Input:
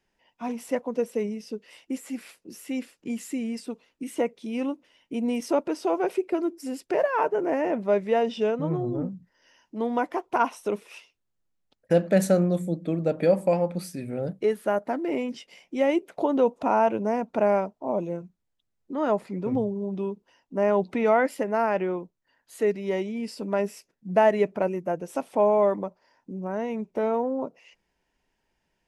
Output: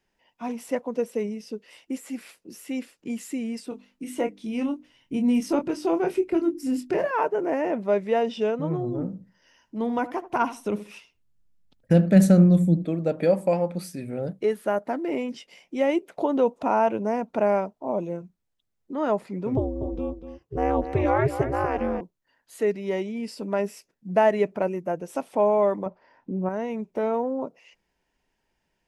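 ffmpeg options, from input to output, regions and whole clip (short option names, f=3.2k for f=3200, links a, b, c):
-filter_complex "[0:a]asettb=1/sr,asplit=3[a][b][c];[a]atrim=end=3.694[d];[b]atrim=start=3.69:end=7.11,asetpts=PTS-STARTPTS,afade=t=in:d=0.004:c=qsin,afade=t=out:st=3.416:d=0.004:c=qsin,bandreject=f=50:t=h:w=6,bandreject=f=100:t=h:w=6,bandreject=f=150:t=h:w=6,bandreject=f=200:t=h:w=6,bandreject=f=250:t=h:w=6,bandreject=f=300:t=h:w=6,bandreject=f=350:t=h:w=6,asubboost=boost=8.5:cutoff=220,asplit=2[e][f];[f]adelay=24,volume=-7dB[g];[e][g]amix=inputs=2:normalize=0,atrim=end_sample=150822[h];[c]atrim=start=7.106[i];[d][h]acrossfade=d=0.004:c1=hsin:c2=qsin[j];[j][i]acrossfade=d=0.004:c1=qsin:c2=hsin,asettb=1/sr,asplit=3[k][l][m];[k]atrim=end=8.904[n];[l]atrim=start=8.9:end=12.85,asetpts=PTS-STARTPTS,afade=t=in:d=0.004:c=qsin,afade=t=out:st=3.946:d=0.004:c=qsin,asubboost=boost=5.5:cutoff=230,asplit=2[o][p];[p]adelay=77,lowpass=f=1k:p=1,volume=-13dB,asplit=2[q][r];[r]adelay=77,lowpass=f=1k:p=1,volume=0.23,asplit=2[s][t];[t]adelay=77,lowpass=f=1k:p=1,volume=0.23[u];[o][q][s][u]amix=inputs=4:normalize=0,atrim=end_sample=174195[v];[m]atrim=start=12.846[w];[n][v]acrossfade=d=0.004:c1=hsin:c2=qsin[x];[x][w]acrossfade=d=0.004:c1=qsin:c2=hsin,asettb=1/sr,asplit=3[y][z][aa];[y]atrim=end=19.574[ab];[z]atrim=start=19.57:end=22.01,asetpts=PTS-STARTPTS,afade=t=in:d=0.004:c=qsin,afade=t=out:st=2.436:d=0.004:c=qsin,equalizer=f=280:w=2.9:g=12.5,aeval=exprs='val(0)*sin(2*PI*140*n/s)':c=same,aecho=1:1:241:0.299,atrim=end_sample=107604[ac];[aa]atrim=start=22.006[ad];[ab][ac]acrossfade=d=0.004:c1=hsin:c2=qsin[ae];[ae][ad]acrossfade=d=0.004:c1=qsin:c2=hsin,asettb=1/sr,asplit=3[af][ag][ah];[af]atrim=end=25.864[ai];[ag]atrim=start=25.86:end=26.49,asetpts=PTS-STARTPTS,afade=t=in:d=0.004:c=qsin,afade=t=out:st=0.626:d=0.004:c=qsin,lowpass=2.8k,acontrast=58[aj];[ah]atrim=start=26.486[ak];[ai][aj]acrossfade=d=0.004:c1=hsin:c2=qsin[al];[al][ak]acrossfade=d=0.004:c1=qsin:c2=hsin"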